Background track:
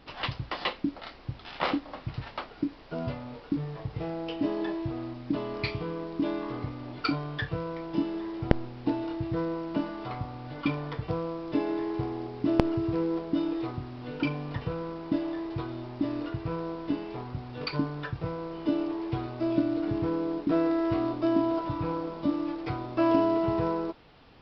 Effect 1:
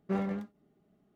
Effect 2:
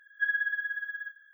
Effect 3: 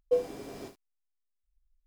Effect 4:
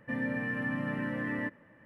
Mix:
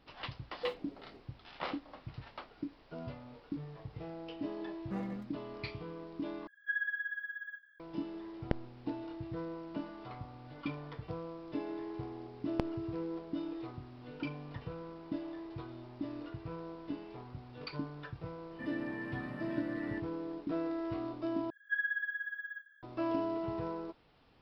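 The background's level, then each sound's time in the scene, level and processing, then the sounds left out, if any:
background track −10.5 dB
0:00.52: mix in 3 −11.5 dB + adaptive Wiener filter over 25 samples
0:04.81: mix in 1 −10 dB + comb filter 4.1 ms, depth 80%
0:06.47: overwrite with 2 −6.5 dB
0:18.51: mix in 4 −10 dB
0:21.50: overwrite with 2 −5.5 dB

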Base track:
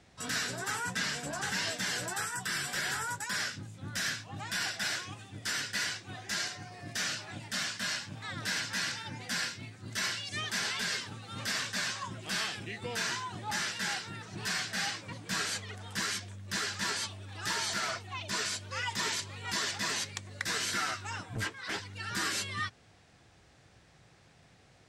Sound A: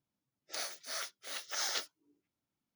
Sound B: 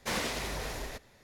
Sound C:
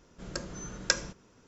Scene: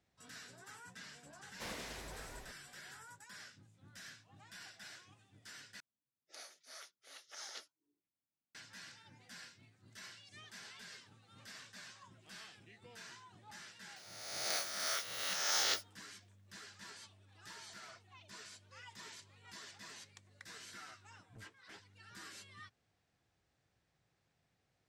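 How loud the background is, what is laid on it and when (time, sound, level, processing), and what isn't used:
base track −19.5 dB
0:01.54: mix in B −13 dB
0:05.80: overwrite with A −13 dB + low-pass filter 12,000 Hz 24 dB per octave
0:13.96: mix in A −1 dB + peak hold with a rise ahead of every peak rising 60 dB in 1.33 s
not used: C

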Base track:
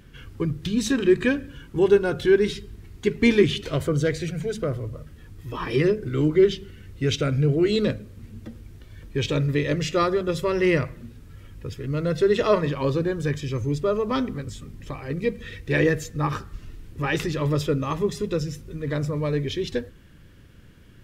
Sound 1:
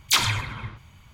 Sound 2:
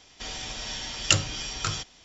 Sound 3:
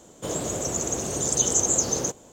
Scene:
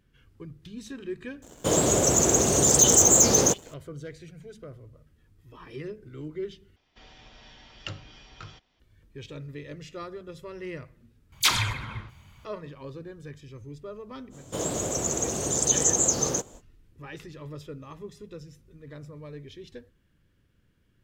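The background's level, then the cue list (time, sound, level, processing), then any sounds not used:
base track −17 dB
0:01.42: mix in 3 −0.5 dB + leveller curve on the samples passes 2
0:06.76: overwrite with 2 −12 dB + high-frequency loss of the air 230 metres
0:11.32: overwrite with 1 −2 dB
0:14.30: mix in 3 −0.5 dB, fades 0.05 s

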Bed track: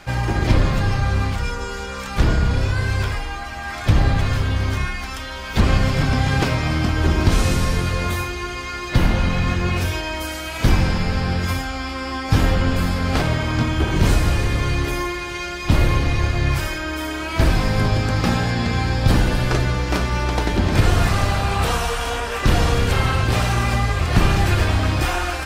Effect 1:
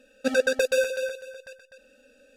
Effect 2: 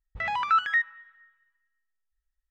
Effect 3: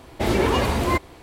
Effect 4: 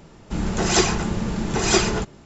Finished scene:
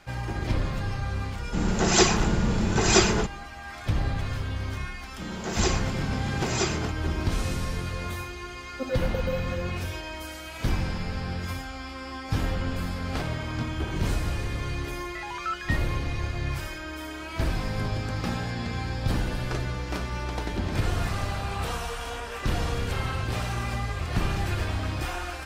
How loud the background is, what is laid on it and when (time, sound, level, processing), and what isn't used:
bed track −10.5 dB
0:01.22: mix in 4 −1 dB
0:04.87: mix in 4 −9 dB + high-pass filter 130 Hz
0:08.55: mix in 1 −7 dB + linear-phase brick-wall band-stop 1,500–13,000 Hz
0:14.95: mix in 2 −9 dB
not used: 3

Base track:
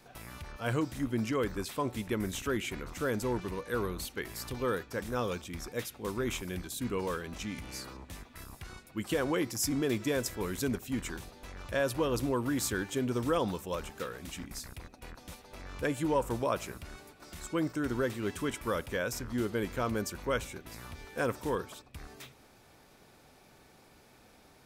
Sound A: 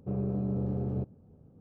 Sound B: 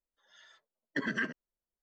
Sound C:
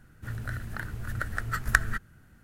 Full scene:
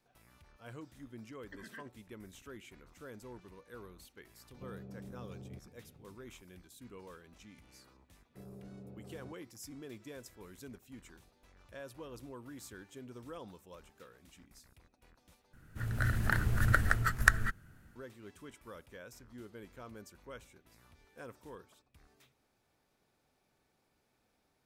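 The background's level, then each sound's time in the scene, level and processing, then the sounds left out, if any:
base track −17.5 dB
0:00.56: mix in B −18 dB
0:04.55: mix in A −4 dB + downward compressor, threshold −42 dBFS
0:08.29: mix in A −16 dB + low-shelf EQ 180 Hz −7.5 dB
0:15.53: overwrite with C −3.5 dB + automatic gain control gain up to 9.5 dB

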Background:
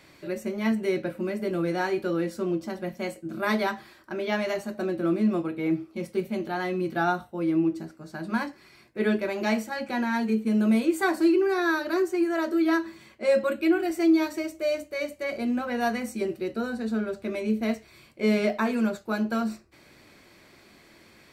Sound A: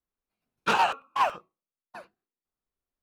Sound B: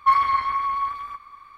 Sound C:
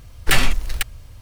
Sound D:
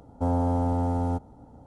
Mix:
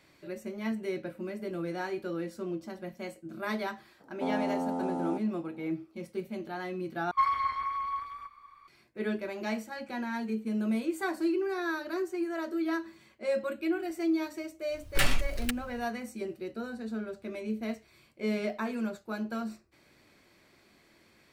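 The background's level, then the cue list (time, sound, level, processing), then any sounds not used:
background −8 dB
0:04.00: mix in D −4.5 dB + Butterworth high-pass 170 Hz
0:07.11: overwrite with B −9 dB
0:14.68: mix in C −10 dB, fades 0.10 s
not used: A

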